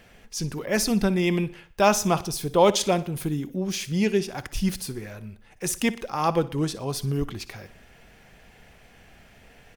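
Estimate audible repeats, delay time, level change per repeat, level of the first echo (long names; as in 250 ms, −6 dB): 3, 60 ms, −6.5 dB, −17.5 dB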